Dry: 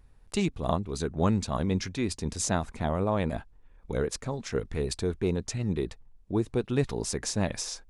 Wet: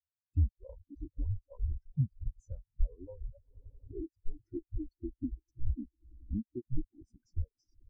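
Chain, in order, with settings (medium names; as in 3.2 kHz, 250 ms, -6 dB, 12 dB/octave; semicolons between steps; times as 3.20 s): frequency shift -120 Hz; echo with a slow build-up 88 ms, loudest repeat 5, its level -14.5 dB; reverb removal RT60 1.4 s; compression 5:1, threshold -34 dBFS, peak gain reduction 13.5 dB; spectral contrast expander 4:1; trim +1.5 dB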